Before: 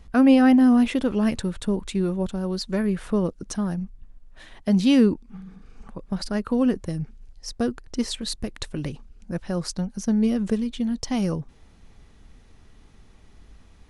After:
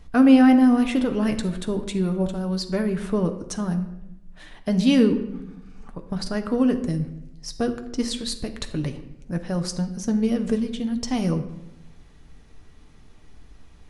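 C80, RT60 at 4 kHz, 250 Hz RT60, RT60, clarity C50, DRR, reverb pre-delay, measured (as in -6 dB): 12.5 dB, 0.60 s, 1.2 s, 0.85 s, 11.0 dB, 6.0 dB, 7 ms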